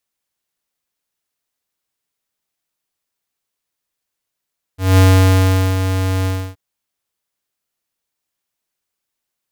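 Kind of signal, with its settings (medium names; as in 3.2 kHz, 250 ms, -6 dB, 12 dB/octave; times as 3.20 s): ADSR square 94.2 Hz, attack 197 ms, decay 779 ms, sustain -9 dB, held 1.48 s, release 295 ms -8 dBFS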